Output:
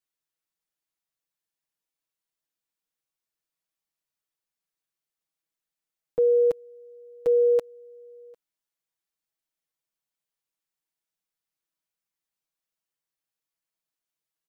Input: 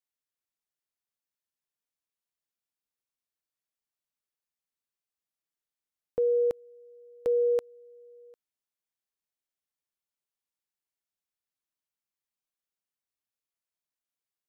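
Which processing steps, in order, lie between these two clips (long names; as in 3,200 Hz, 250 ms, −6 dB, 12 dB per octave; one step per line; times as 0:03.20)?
comb filter 6.2 ms, depth 79%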